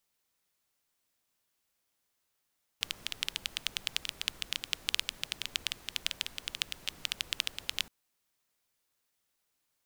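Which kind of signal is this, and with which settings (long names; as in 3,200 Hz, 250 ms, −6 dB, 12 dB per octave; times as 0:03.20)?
rain-like ticks over hiss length 5.07 s, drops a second 11, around 3,100 Hz, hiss −15 dB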